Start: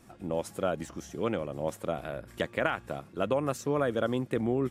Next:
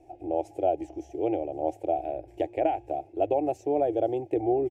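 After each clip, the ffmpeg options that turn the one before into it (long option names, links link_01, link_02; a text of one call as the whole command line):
ffmpeg -i in.wav -af "firequalizer=gain_entry='entry(100,0);entry(210,-30);entry(310,9);entry(510,0);entry(770,13);entry(1100,-29);entry(2400,-5);entry(3700,-17);entry(6000,-12);entry(9900,-18)':delay=0.05:min_phase=1" out.wav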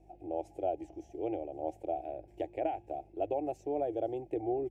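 ffmpeg -i in.wav -af "aeval=exprs='val(0)+0.002*(sin(2*PI*50*n/s)+sin(2*PI*2*50*n/s)/2+sin(2*PI*3*50*n/s)/3+sin(2*PI*4*50*n/s)/4+sin(2*PI*5*50*n/s)/5)':channel_layout=same,volume=-8dB" out.wav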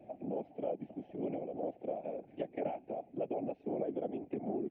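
ffmpeg -i in.wav -af "afftfilt=real='hypot(re,im)*cos(2*PI*random(0))':imag='hypot(re,im)*sin(2*PI*random(1))':win_size=512:overlap=0.75,highpass=frequency=210:width_type=q:width=0.5412,highpass=frequency=210:width_type=q:width=1.307,lowpass=frequency=3400:width_type=q:width=0.5176,lowpass=frequency=3400:width_type=q:width=0.7071,lowpass=frequency=3400:width_type=q:width=1.932,afreqshift=-71,acompressor=threshold=-58dB:ratio=2,volume=14.5dB" out.wav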